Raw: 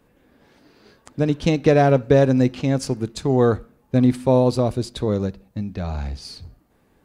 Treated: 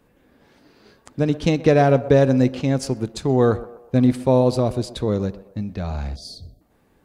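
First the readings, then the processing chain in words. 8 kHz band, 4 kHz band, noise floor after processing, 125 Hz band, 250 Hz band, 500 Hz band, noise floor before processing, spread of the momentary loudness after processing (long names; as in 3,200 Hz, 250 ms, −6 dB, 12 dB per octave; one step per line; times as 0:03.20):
0.0 dB, 0.0 dB, −60 dBFS, 0.0 dB, 0.0 dB, 0.0 dB, −61 dBFS, 14 LU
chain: feedback echo with a band-pass in the loop 125 ms, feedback 48%, band-pass 690 Hz, level −15 dB
time-frequency box erased 0:06.16–0:06.61, 750–3,200 Hz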